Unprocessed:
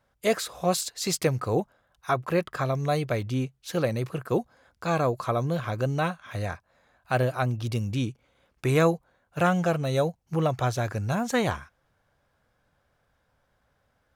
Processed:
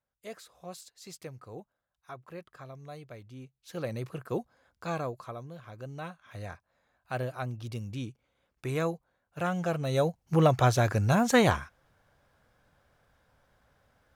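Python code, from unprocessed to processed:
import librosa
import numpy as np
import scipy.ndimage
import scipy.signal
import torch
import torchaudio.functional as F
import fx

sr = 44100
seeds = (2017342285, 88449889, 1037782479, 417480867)

y = fx.gain(x, sr, db=fx.line((3.36, -19.0), (3.94, -7.0), (4.89, -7.0), (5.54, -18.0), (6.51, -9.0), (9.38, -9.0), (10.42, 3.0)))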